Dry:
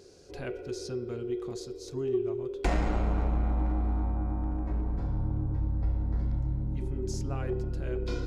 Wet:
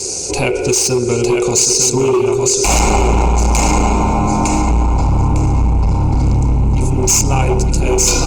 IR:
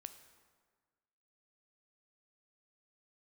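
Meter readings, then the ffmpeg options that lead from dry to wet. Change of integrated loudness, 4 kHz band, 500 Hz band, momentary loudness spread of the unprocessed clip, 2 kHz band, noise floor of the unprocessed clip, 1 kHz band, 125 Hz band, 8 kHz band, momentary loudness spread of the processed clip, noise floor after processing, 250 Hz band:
+18.5 dB, +27.5 dB, +18.0 dB, 8 LU, +21.5 dB, −44 dBFS, +23.5 dB, +16.5 dB, can't be measured, 4 LU, −19 dBFS, +17.5 dB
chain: -filter_complex "[0:a]aresample=22050,aresample=44100,aecho=1:1:905|1810|2715|3620:0.531|0.186|0.065|0.0228,adynamicequalizer=threshold=0.00562:dfrequency=310:dqfactor=5.1:tfrequency=310:tqfactor=5.1:attack=5:release=100:ratio=0.375:range=2:mode=cutabove:tftype=bell,acontrast=64,asplit=2[link_01][link_02];[link_02]highpass=48[link_03];[1:a]atrim=start_sample=2205[link_04];[link_03][link_04]afir=irnorm=-1:irlink=0,volume=-9dB[link_05];[link_01][link_05]amix=inputs=2:normalize=0,aexciter=amount=8.6:drive=1.3:freq=4400,asoftclip=type=hard:threshold=-20.5dB,acompressor=threshold=-29dB:ratio=6,superequalizer=9b=2.51:11b=0.282:12b=3.16:15b=2.24,alimiter=level_in=21dB:limit=-1dB:release=50:level=0:latency=1,volume=-3.5dB" -ar 48000 -c:a libopus -b:a 32k

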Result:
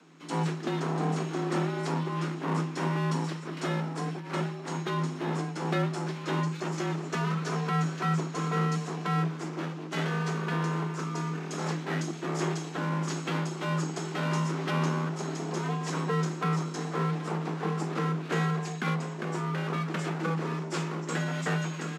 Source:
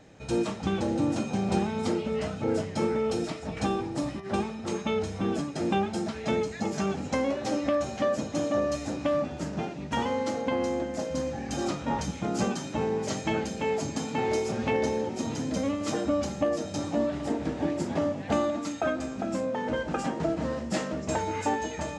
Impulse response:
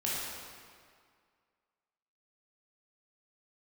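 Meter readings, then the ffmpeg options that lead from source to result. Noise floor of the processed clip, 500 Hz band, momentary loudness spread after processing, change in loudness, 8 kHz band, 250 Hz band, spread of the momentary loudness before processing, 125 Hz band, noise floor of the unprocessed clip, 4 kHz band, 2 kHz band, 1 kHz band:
−39 dBFS, −6.5 dB, 4 LU, −1.5 dB, −2.5 dB, −2.5 dB, 4 LU, +6.5 dB, −39 dBFS, −1.0 dB, +2.0 dB, −0.5 dB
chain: -filter_complex "[0:a]highpass=110,highshelf=frequency=7400:gain=-6,acrossover=split=230|3100[link_01][link_02][link_03];[link_02]aeval=exprs='abs(val(0))':channel_layout=same[link_04];[link_01][link_04][link_03]amix=inputs=3:normalize=0,afreqshift=160,aresample=32000,aresample=44100"

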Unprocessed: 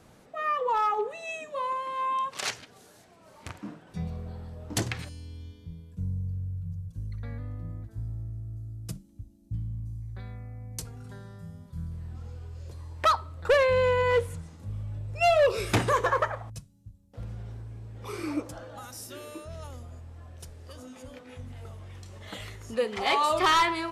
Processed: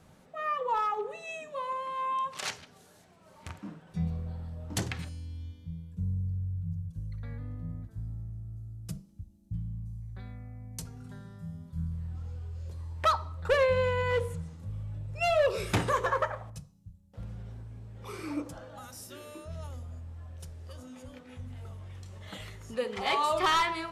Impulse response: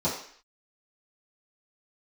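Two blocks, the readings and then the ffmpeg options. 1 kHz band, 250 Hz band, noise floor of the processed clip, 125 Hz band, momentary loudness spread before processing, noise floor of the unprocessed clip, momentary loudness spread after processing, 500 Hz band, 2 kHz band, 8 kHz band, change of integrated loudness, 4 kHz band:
−3.5 dB, −2.0 dB, −59 dBFS, −1.0 dB, 21 LU, −56 dBFS, 18 LU, −4.0 dB, −3.5 dB, −4.0 dB, −4.0 dB, −3.5 dB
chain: -filter_complex "[0:a]asplit=2[link_01][link_02];[1:a]atrim=start_sample=2205,lowshelf=frequency=340:gain=7.5[link_03];[link_02][link_03]afir=irnorm=-1:irlink=0,volume=-25dB[link_04];[link_01][link_04]amix=inputs=2:normalize=0,volume=-3.5dB"

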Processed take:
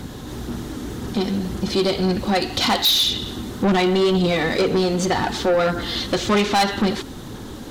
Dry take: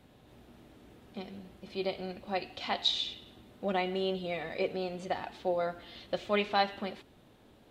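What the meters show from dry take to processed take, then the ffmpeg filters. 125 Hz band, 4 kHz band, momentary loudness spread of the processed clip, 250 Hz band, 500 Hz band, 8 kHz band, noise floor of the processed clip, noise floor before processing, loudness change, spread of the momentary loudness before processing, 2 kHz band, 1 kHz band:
+20.0 dB, +14.5 dB, 14 LU, +18.5 dB, +13.0 dB, +25.0 dB, −35 dBFS, −60 dBFS, +13.5 dB, 16 LU, +13.5 dB, +12.0 dB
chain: -filter_complex "[0:a]equalizer=frequency=630:width_type=o:width=0.67:gain=-10,equalizer=frequency=2500:width_type=o:width=0.67:gain=-9,equalizer=frequency=6300:width_type=o:width=0.67:gain=6,asplit=2[link_01][link_02];[link_02]acompressor=threshold=-44dB:ratio=6,volume=2dB[link_03];[link_01][link_03]amix=inputs=2:normalize=0,aphaser=in_gain=1:out_gain=1:delay=3.9:decay=0.27:speed=1.9:type=sinusoidal,apsyclip=19.5dB,asoftclip=type=tanh:threshold=-13.5dB"

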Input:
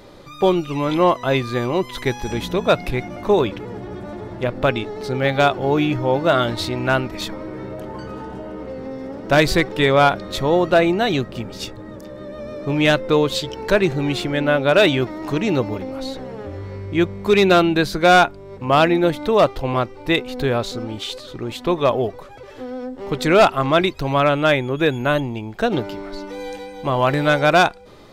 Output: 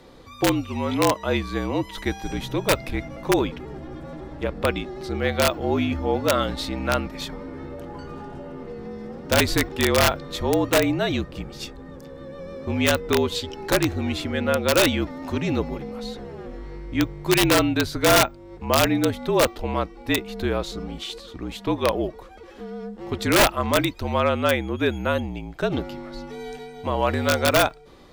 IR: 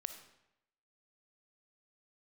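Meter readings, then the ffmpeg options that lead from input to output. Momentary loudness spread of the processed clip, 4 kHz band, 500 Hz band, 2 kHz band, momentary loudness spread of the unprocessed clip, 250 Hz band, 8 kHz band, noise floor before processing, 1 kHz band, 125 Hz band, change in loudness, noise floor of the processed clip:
18 LU, −1.5 dB, −5.5 dB, −4.5 dB, 17 LU, −3.5 dB, +6.5 dB, −38 dBFS, −6.0 dB, −4.0 dB, −4.0 dB, −43 dBFS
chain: -af "aeval=exprs='(mod(2.11*val(0)+1,2)-1)/2.11':channel_layout=same,afreqshift=-49,volume=-4.5dB"

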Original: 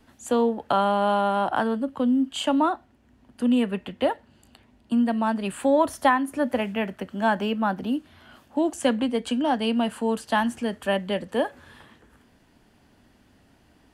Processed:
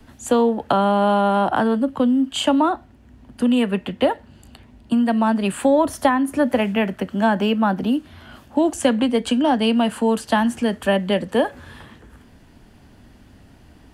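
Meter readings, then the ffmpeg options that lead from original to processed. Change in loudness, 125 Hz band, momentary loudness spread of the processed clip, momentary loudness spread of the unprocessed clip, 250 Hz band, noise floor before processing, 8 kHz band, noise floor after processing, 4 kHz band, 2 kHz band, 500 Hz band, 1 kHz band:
+5.0 dB, +8.0 dB, 5 LU, 7 LU, +5.5 dB, −60 dBFS, +6.0 dB, −50 dBFS, +5.5 dB, +3.5 dB, +5.0 dB, +3.5 dB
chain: -filter_complex "[0:a]lowshelf=frequency=160:gain=9,acrossover=split=150|510[link_01][link_02][link_03];[link_01]acompressor=threshold=-47dB:ratio=4[link_04];[link_02]acompressor=threshold=-24dB:ratio=4[link_05];[link_03]acompressor=threshold=-24dB:ratio=4[link_06];[link_04][link_05][link_06]amix=inputs=3:normalize=0,volume=6.5dB"

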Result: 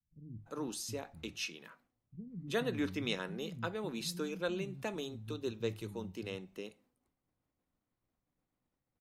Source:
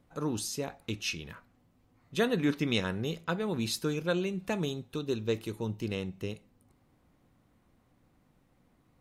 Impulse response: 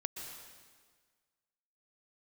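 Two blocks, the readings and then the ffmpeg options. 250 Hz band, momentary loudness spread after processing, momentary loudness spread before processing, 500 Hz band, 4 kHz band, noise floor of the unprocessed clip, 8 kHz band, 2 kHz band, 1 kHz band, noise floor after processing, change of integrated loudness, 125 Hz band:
−7.5 dB, 13 LU, 10 LU, −6.0 dB, −5.5 dB, −68 dBFS, −5.5 dB, −5.5 dB, −5.5 dB, below −85 dBFS, −6.5 dB, −8.5 dB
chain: -filter_complex "[0:a]agate=range=-33dB:threshold=-57dB:ratio=3:detection=peak,bandreject=frequency=50:width_type=h:width=6,bandreject=frequency=100:width_type=h:width=6,bandreject=frequency=150:width_type=h:width=6,acrossover=split=190[link_01][link_02];[link_02]adelay=350[link_03];[link_01][link_03]amix=inputs=2:normalize=0,volume=-5.5dB"

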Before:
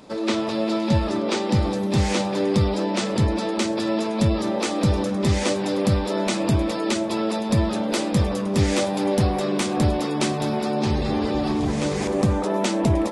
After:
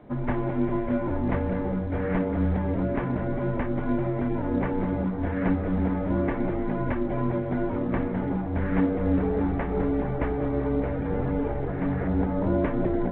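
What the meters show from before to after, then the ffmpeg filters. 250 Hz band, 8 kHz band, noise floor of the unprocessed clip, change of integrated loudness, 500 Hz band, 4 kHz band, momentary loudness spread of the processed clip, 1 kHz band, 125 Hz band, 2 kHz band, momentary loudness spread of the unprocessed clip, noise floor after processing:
−3.0 dB, below −40 dB, −26 dBFS, −4.5 dB, −4.5 dB, below −25 dB, 3 LU, −6.0 dB, −4.5 dB, −6.0 dB, 3 LU, −29 dBFS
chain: -af "tiltshelf=frequency=1400:gain=6.5,highpass=frequency=430:width_type=q:width=0.5412,highpass=frequency=430:width_type=q:width=1.307,lowpass=frequency=2400:width_type=q:width=0.5176,lowpass=frequency=2400:width_type=q:width=0.7071,lowpass=frequency=2400:width_type=q:width=1.932,afreqshift=-310,volume=-1.5dB" -ar 8000 -c:a pcm_alaw

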